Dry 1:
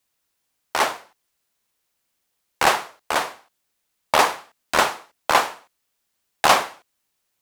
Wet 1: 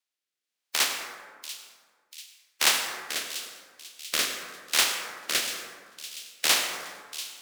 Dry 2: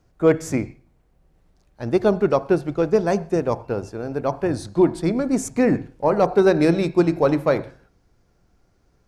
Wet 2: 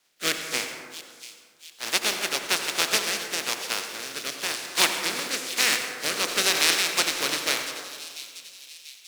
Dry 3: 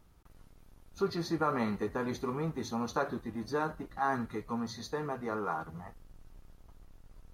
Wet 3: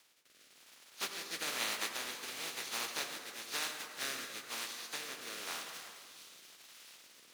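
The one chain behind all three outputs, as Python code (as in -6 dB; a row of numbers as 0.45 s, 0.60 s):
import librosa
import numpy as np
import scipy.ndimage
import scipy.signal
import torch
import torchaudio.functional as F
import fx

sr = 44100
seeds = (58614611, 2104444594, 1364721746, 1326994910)

p1 = fx.spec_flatten(x, sr, power=0.22)
p2 = scipy.signal.sosfilt(scipy.signal.butter(2, 250.0, 'highpass', fs=sr, output='sos'), p1)
p3 = fx.peak_eq(p2, sr, hz=3300.0, db=9.0, octaves=2.8)
p4 = fx.quant_companded(p3, sr, bits=4)
p5 = p3 + F.gain(torch.from_numpy(p4), -4.0).numpy()
p6 = fx.rotary(p5, sr, hz=1.0)
p7 = p6 + fx.echo_split(p6, sr, split_hz=2600.0, low_ms=82, high_ms=690, feedback_pct=52, wet_db=-13.0, dry=0)
p8 = fx.rev_plate(p7, sr, seeds[0], rt60_s=2.0, hf_ratio=0.35, predelay_ms=75, drr_db=6.5)
y = F.gain(torch.from_numpy(p8), -13.5).numpy()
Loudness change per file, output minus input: -5.0 LU, -3.5 LU, -4.0 LU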